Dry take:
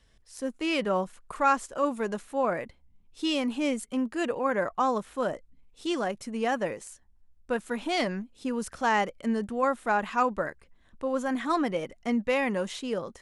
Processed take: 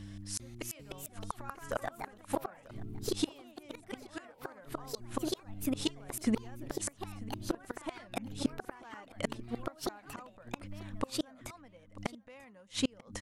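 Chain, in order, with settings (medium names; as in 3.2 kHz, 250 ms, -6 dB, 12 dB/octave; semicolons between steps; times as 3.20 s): peaking EQ 350 Hz -11 dB 0.37 oct; mains buzz 100 Hz, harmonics 3, -56 dBFS -4 dB/octave; inverted gate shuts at -27 dBFS, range -36 dB; ever faster or slower copies 398 ms, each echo +3 st, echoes 2; delay 940 ms -19.5 dB; trim +9.5 dB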